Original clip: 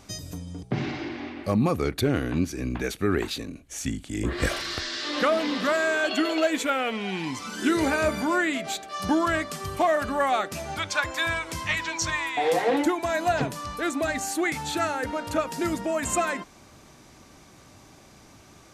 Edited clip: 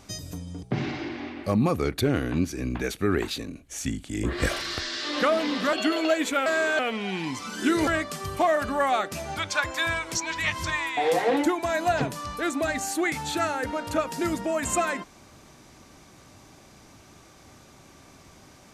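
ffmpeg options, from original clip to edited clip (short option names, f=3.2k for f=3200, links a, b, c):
-filter_complex "[0:a]asplit=7[a][b][c][d][e][f][g];[a]atrim=end=5.732[h];[b]atrim=start=6.058:end=6.792[i];[c]atrim=start=5.728:end=6.062[j];[d]atrim=start=6.788:end=7.872[k];[e]atrim=start=9.268:end=11.552[l];[f]atrim=start=11.548:end=12.042,asetpts=PTS-STARTPTS,areverse[m];[g]atrim=start=12.038[n];[h][i]acrossfade=d=0.004:c1=hsin:c2=hsin[o];[o][j]acrossfade=d=0.004:c1=hsin:c2=hsin[p];[p][k]acrossfade=d=0.004:c1=hsin:c2=hsin[q];[q][l]acrossfade=d=0.004:c1=hsin:c2=hsin[r];[r][m]acrossfade=d=0.004:c1=hsin:c2=hsin[s];[s][n]acrossfade=d=0.004:c1=hsin:c2=hsin"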